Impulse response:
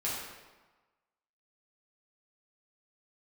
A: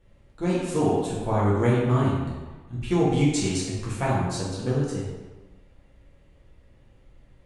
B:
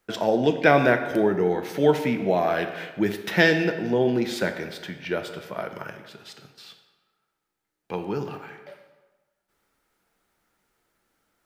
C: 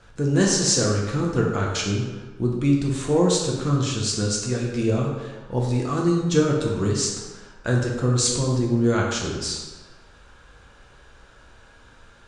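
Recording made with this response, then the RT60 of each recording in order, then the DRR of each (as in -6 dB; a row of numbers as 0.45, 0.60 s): A; 1.3, 1.3, 1.3 s; -8.0, 6.0, -2.5 dB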